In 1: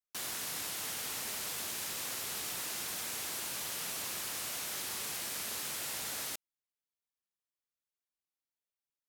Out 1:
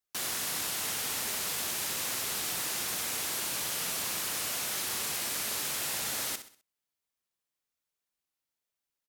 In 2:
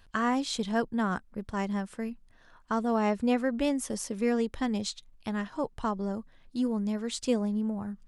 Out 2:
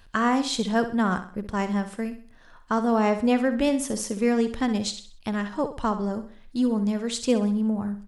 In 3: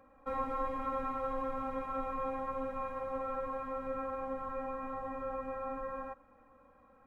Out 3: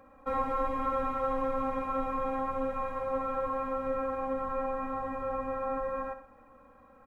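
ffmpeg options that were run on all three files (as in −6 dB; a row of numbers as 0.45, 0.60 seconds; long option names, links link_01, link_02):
-af "aecho=1:1:64|128|192|256:0.282|0.11|0.0429|0.0167,volume=5dB"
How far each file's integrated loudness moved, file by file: +5.5, +5.5, +5.5 LU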